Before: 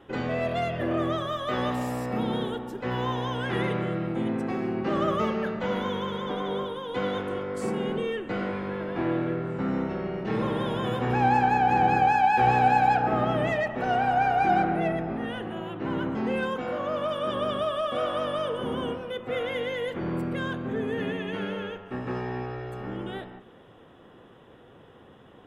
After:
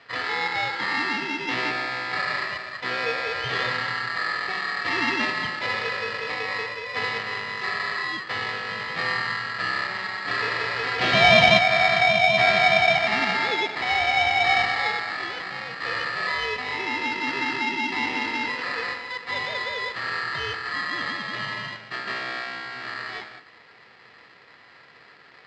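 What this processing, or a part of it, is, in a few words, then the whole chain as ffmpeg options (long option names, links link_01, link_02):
ring modulator pedal into a guitar cabinet: -filter_complex "[0:a]asettb=1/sr,asplit=3[link_01][link_02][link_03];[link_01]atrim=end=10.994[link_04];[link_02]atrim=start=10.99:end=11.59,asetpts=PTS-STARTPTS,afade=type=in:duration=0.004:curve=qsin,afade=type=out:start_time=0.596:duration=0.004:curve=qsin,equalizer=frequency=3000:width_type=o:width=2.9:gain=13[link_05];[link_03]atrim=start=11.586[link_06];[link_04][link_05]acrossfade=duration=0.004:curve1=hsin:curve2=qsin[link_07];[link_07][link_06]acrossfade=duration=0.004:curve1=qsin:curve2=hsin,aeval=exprs='val(0)*sgn(sin(2*PI*1500*n/s))':channel_layout=same,highpass=110,equalizer=frequency=130:width_type=q:width=4:gain=5,equalizer=frequency=470:width_type=q:width=4:gain=4,equalizer=frequency=1100:width_type=q:width=4:gain=-8,lowpass=frequency=4300:width=0.5412,lowpass=frequency=4300:width=1.3066,volume=3dB"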